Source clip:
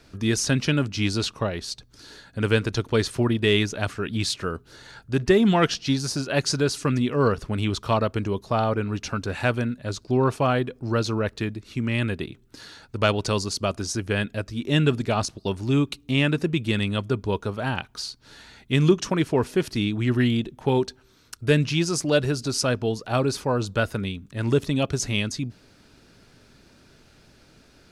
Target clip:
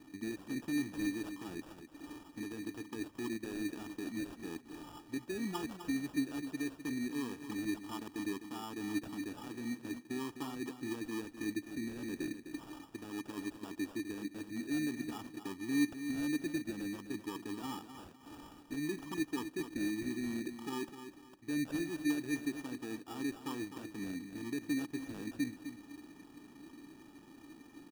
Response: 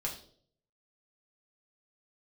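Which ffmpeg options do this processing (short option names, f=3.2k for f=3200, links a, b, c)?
-filter_complex "[0:a]highpass=96,areverse,acompressor=threshold=-30dB:ratio=12,areverse,alimiter=level_in=5.5dB:limit=-24dB:level=0:latency=1:release=179,volume=-5.5dB,asplit=3[a][b][c];[a]bandpass=f=300:t=q:w=8,volume=0dB[d];[b]bandpass=f=870:t=q:w=8,volume=-6dB[e];[c]bandpass=f=2.24k:t=q:w=8,volume=-9dB[f];[d][e][f]amix=inputs=3:normalize=0,acrusher=samples=21:mix=1:aa=0.000001,asplit=2[g][h];[h]aecho=0:1:255|510|765:0.316|0.0917|0.0266[i];[g][i]amix=inputs=2:normalize=0,volume=11.5dB"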